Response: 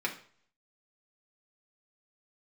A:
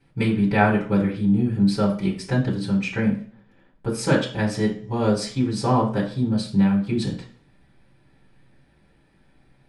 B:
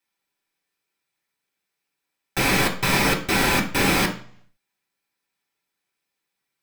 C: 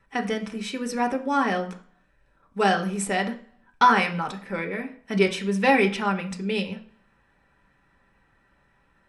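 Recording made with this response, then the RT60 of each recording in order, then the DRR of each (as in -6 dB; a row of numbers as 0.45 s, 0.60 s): B; 0.50 s, 0.50 s, 0.50 s; -9.5 dB, -1.5 dB, 2.5 dB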